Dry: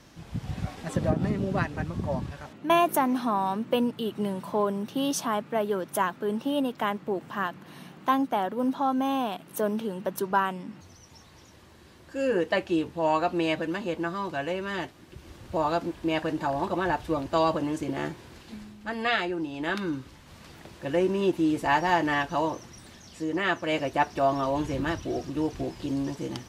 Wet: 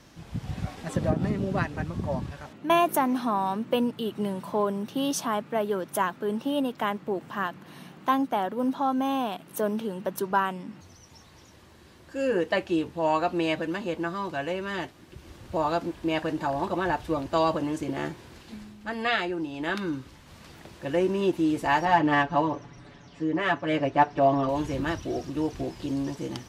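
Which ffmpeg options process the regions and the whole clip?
ffmpeg -i in.wav -filter_complex "[0:a]asettb=1/sr,asplit=3[link_01][link_02][link_03];[link_01]atrim=end=21.854[link_04];[link_02]atrim=start=21.85:end=24.49,asetpts=PTS-STARTPTS,afade=type=in:duration=0.004:curve=qsin,afade=type=out:start_time=2.636:duration=0.004:curve=qsin,aecho=1:1:7:0.82,atrim=end_sample=116424,adynamicsmooth=sensitivity=4:basefreq=4800,highshelf=frequency=3900:gain=-9[link_05];[link_03]atrim=start=24.486[link_06];[link_04][link_05]acrossfade=duration=0.004:curve1=hsin:curve2=qsin[link_07];[link_07][link_06]acrossfade=duration=0.004:curve1=qsin:curve2=hsin" out.wav

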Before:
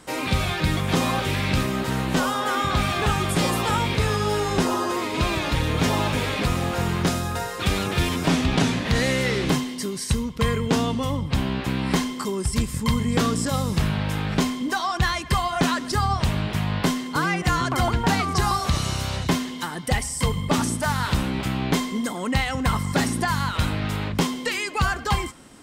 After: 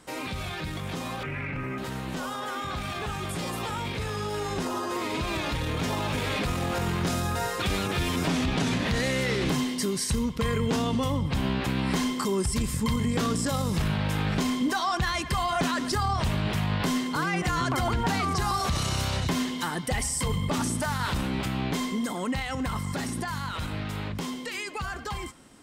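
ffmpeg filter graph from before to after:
ffmpeg -i in.wav -filter_complex "[0:a]asettb=1/sr,asplit=3[link_01][link_02][link_03];[link_01]atrim=end=1.234[link_04];[link_02]atrim=start=1.23:end=1.78,asetpts=PTS-STARTPTS,afade=type=in:duration=0.004:curve=qsin,afade=type=out:start_time=0.546:duration=0.004:curve=qsin,acrossover=split=2900[link_05][link_06];[link_06]acompressor=threshold=-45dB:ratio=4:attack=1:release=60[link_07];[link_05][link_07]amix=inputs=2:normalize=0,highshelf=frequency=2900:width_type=q:width=3:gain=-6.5,aecho=1:1:7.1:1,atrim=end_sample=24255[link_08];[link_03]atrim=start=1.776[link_09];[link_04][link_08]acrossfade=duration=0.004:curve1=hsin:curve2=qsin[link_10];[link_10][link_09]acrossfade=duration=0.004:curve1=qsin:curve2=hsin,alimiter=limit=-20dB:level=0:latency=1:release=30,dynaudnorm=framelen=980:gausssize=11:maxgain=7dB,volume=-5.5dB" out.wav

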